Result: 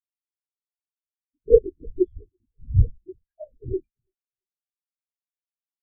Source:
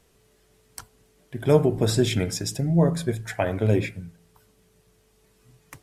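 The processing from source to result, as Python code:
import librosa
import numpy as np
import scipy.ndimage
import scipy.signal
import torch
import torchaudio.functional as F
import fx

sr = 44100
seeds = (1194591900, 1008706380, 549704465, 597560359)

y = fx.lpc_vocoder(x, sr, seeds[0], excitation='whisper', order=8)
y = fx.echo_feedback(y, sr, ms=335, feedback_pct=57, wet_db=-15.0)
y = fx.spectral_expand(y, sr, expansion=4.0)
y = F.gain(torch.from_numpy(y), 4.0).numpy()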